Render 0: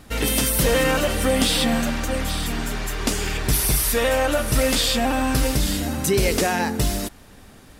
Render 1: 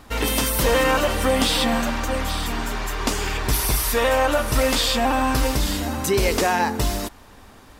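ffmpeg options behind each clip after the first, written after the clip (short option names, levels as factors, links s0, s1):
-af "equalizer=f=160:t=o:w=0.67:g=-6,equalizer=f=1000:t=o:w=0.67:g=7,equalizer=f=10000:t=o:w=0.67:g=-4"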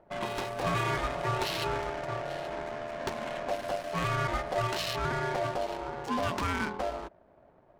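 -af "aeval=exprs='val(0)*sin(2*PI*640*n/s)':c=same,adynamicsmooth=sensitivity=3:basefreq=800,volume=0.398"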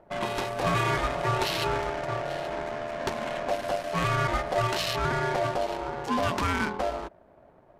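-af "aresample=32000,aresample=44100,volume=1.58"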